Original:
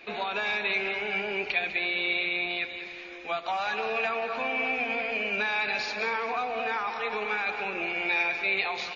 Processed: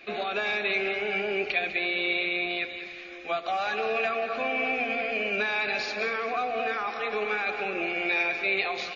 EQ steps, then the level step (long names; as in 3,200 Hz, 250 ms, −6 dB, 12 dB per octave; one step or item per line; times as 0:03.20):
Butterworth band-reject 930 Hz, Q 5
notch filter 470 Hz, Q 15
dynamic equaliser 430 Hz, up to +5 dB, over −45 dBFS, Q 0.96
0.0 dB